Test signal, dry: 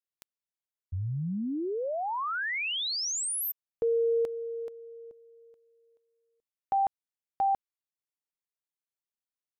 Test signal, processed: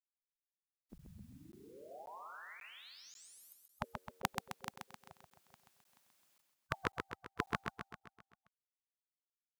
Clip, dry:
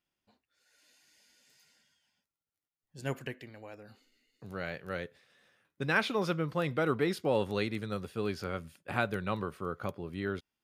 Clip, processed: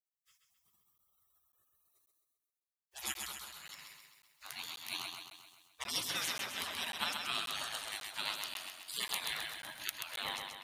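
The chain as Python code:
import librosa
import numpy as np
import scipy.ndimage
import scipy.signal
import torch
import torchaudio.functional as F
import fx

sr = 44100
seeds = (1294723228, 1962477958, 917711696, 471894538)

y = scipy.signal.sosfilt(scipy.signal.butter(2, 110.0, 'highpass', fs=sr, output='sos'), x)
y = fx.spec_gate(y, sr, threshold_db=-30, keep='weak')
y = fx.rider(y, sr, range_db=4, speed_s=2.0)
y = fx.echo_feedback(y, sr, ms=131, feedback_pct=54, wet_db=-5)
y = fx.buffer_crackle(y, sr, first_s=0.98, period_s=0.54, block=512, kind='zero')
y = y * 10.0 ** (15.5 / 20.0)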